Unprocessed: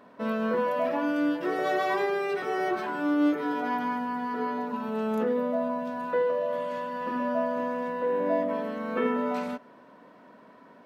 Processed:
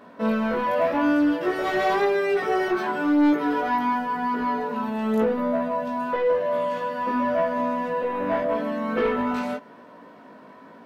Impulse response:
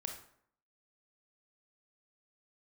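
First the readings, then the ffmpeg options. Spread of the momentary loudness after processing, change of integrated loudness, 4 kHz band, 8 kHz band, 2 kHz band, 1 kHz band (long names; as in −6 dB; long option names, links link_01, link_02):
6 LU, +4.5 dB, +5.5 dB, can't be measured, +5.0 dB, +5.5 dB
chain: -af "aeval=exprs='0.188*sin(PI/2*1.78*val(0)/0.188)':channel_layout=same,flanger=delay=17:depth=2.5:speed=0.91"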